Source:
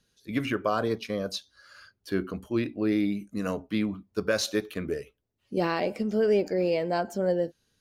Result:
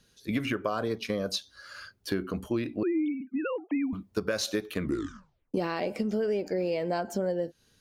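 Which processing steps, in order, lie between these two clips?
2.83–3.93 sine-wave speech; 4.8 tape stop 0.74 s; compressor, threshold -33 dBFS, peak gain reduction 13 dB; gain +6.5 dB

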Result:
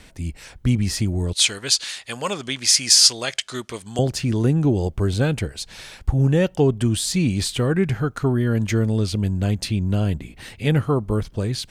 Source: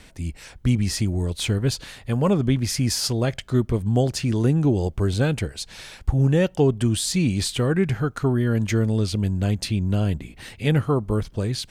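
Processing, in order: 1.33–3.99 weighting filter ITU-R 468; gain +1 dB

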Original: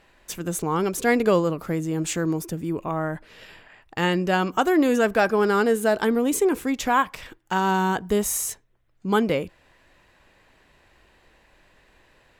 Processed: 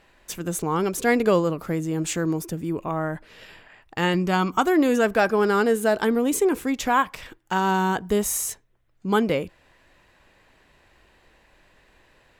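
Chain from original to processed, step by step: 4.14–4.66 comb 0.9 ms, depth 45%

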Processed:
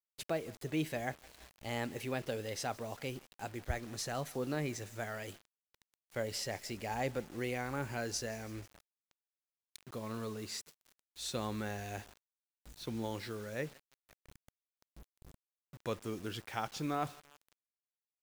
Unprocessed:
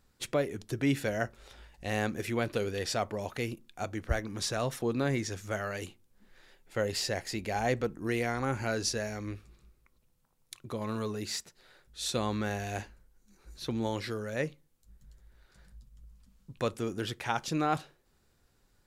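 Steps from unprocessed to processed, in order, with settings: speed glide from 113% -> 94%; thinning echo 0.165 s, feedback 66%, high-pass 400 Hz, level -22 dB; bit-crush 8-bit; gain -6.5 dB

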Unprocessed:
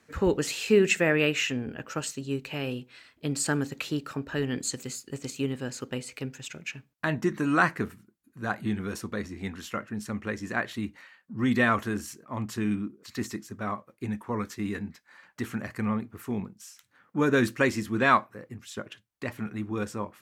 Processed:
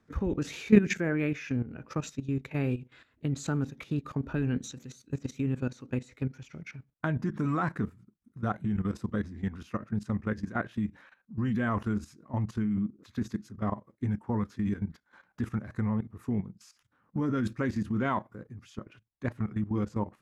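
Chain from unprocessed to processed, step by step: tilt -2.5 dB/oct; formant shift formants -2 st; level quantiser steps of 14 dB

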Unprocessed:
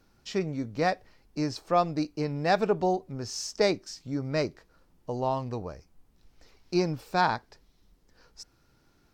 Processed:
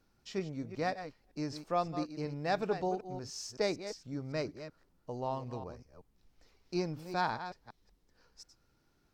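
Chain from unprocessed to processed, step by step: reverse delay 0.188 s, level -10.5 dB; gain -8 dB

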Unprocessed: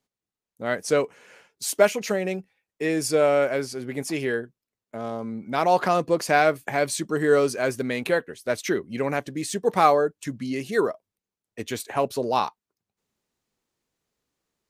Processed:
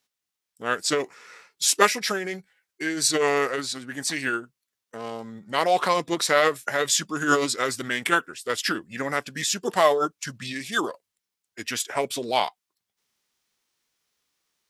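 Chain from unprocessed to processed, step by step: formant shift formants -3 st; tilt shelf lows -8 dB, about 750 Hz

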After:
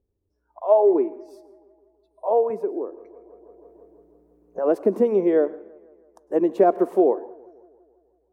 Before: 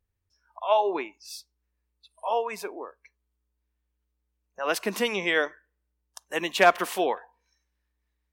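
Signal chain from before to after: EQ curve 140 Hz 0 dB, 370 Hz +14 dB, 3000 Hz -27 dB, 9800 Hz -21 dB; compressor 2:1, threshold -19 dBFS, peak gain reduction 6 dB; dynamic EQ 640 Hz, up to +4 dB, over -35 dBFS, Q 7.1; tape echo 0.164 s, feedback 63%, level -23 dB, low-pass 2700 Hz; on a send at -20 dB: reverb RT60 0.45 s, pre-delay 97 ms; 2.5–4.62 on the sum: three-band squash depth 70%; gain +2.5 dB

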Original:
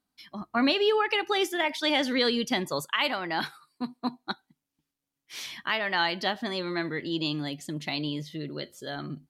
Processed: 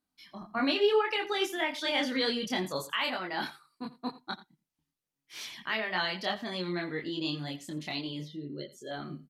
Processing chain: 8.25–8.91 spectral contrast raised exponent 1.7; echo 85 ms -17 dB; chorus voices 4, 0.69 Hz, delay 25 ms, depth 3.2 ms; gain -1 dB

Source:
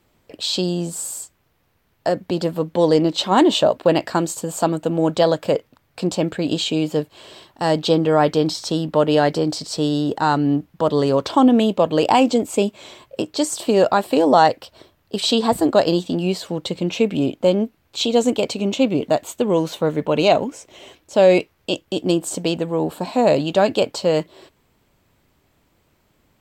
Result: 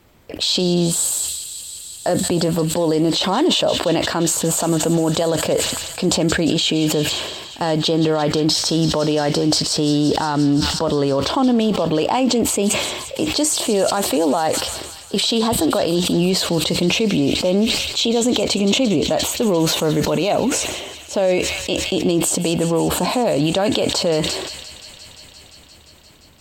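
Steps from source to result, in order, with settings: bell 73 Hz +9.5 dB 0.28 oct; in parallel at -1 dB: negative-ratio compressor -23 dBFS; on the sum: limiter -9.5 dBFS, peak gain reduction 9 dB; on a send: thin delay 0.174 s, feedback 84%, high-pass 2200 Hz, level -12 dB; on the sum: sustainer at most 40 dB/s

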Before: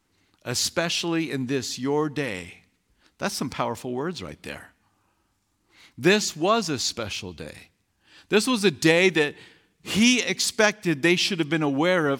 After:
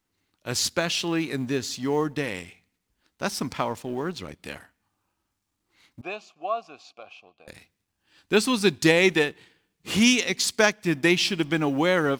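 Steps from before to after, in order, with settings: G.711 law mismatch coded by A; 6.01–7.48 vowel filter a

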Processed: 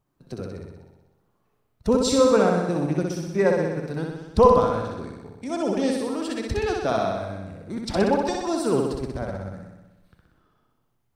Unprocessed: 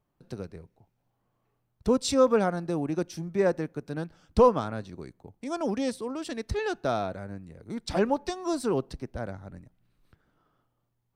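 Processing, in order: bin magnitudes rounded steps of 15 dB; flutter echo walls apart 10.7 m, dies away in 1.1 s; gain +3 dB

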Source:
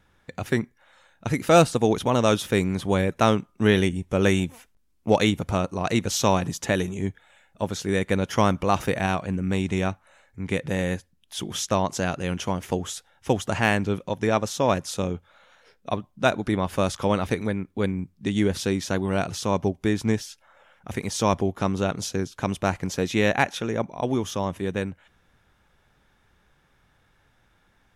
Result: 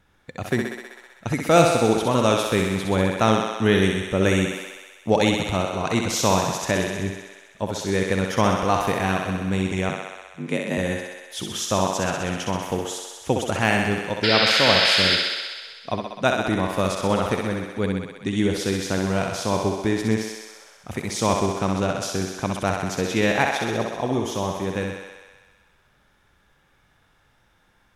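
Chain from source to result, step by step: 9.89–10.78 frequency shift +57 Hz; 14.23–15.16 painted sound noise 1300–5300 Hz -22 dBFS; thinning echo 64 ms, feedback 77%, high-pass 290 Hz, level -4 dB

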